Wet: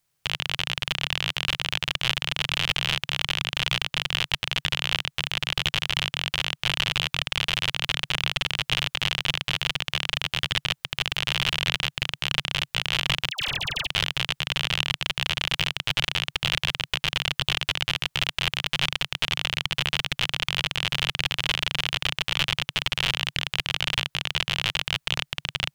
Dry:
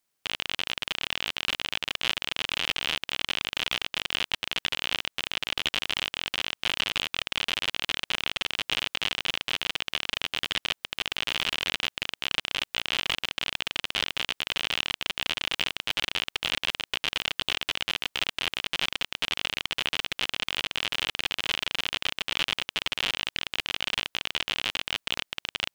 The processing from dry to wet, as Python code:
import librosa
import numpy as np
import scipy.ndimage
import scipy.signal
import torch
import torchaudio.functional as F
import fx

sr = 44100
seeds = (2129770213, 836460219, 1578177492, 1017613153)

y = fx.dispersion(x, sr, late='lows', ms=102.0, hz=1000.0, at=(13.3, 13.87))
y = fx.low_shelf_res(y, sr, hz=180.0, db=8.0, q=3.0)
y = y * librosa.db_to_amplitude(3.5)